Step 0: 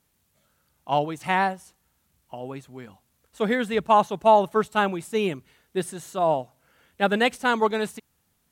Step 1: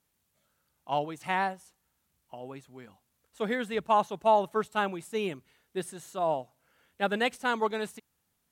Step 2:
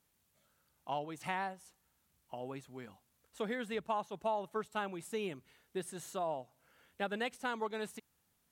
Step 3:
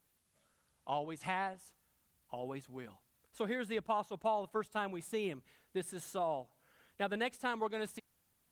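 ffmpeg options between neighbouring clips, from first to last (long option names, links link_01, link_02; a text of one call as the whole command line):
ffmpeg -i in.wav -af "lowshelf=frequency=210:gain=-4,volume=-6dB" out.wav
ffmpeg -i in.wav -af "acompressor=threshold=-38dB:ratio=2.5" out.wav
ffmpeg -i in.wav -af "volume=1dB" -ar 48000 -c:a libopus -b:a 24k out.opus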